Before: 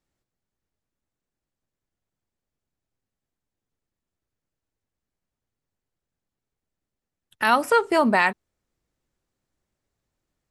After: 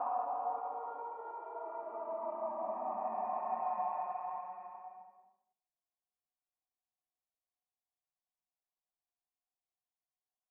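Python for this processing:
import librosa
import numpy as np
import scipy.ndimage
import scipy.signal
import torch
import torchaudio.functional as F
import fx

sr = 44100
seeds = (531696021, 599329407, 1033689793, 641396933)

y = fx.paulstretch(x, sr, seeds[0], factor=5.5, window_s=0.5, from_s=7.54)
y = fx.formant_cascade(y, sr, vowel='a')
y = y * librosa.db_to_amplitude(-7.0)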